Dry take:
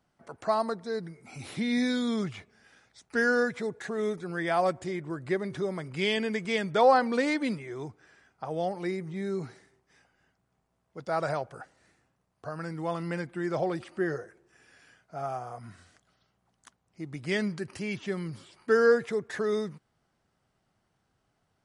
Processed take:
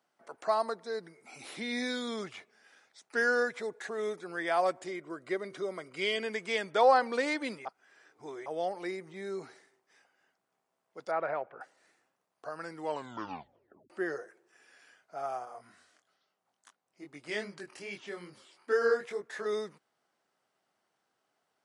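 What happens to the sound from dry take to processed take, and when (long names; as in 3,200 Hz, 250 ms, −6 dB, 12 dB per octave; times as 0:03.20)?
0:04.90–0:06.23: notch comb filter 860 Hz
0:07.65–0:08.46: reverse
0:11.11–0:11.61: Chebyshev low-pass filter 2,400 Hz, order 3
0:12.80: tape stop 1.10 s
0:15.45–0:19.46: chorus effect 2.4 Hz, delay 20 ms, depth 4.3 ms
whole clip: high-pass filter 380 Hz 12 dB per octave; level −1.5 dB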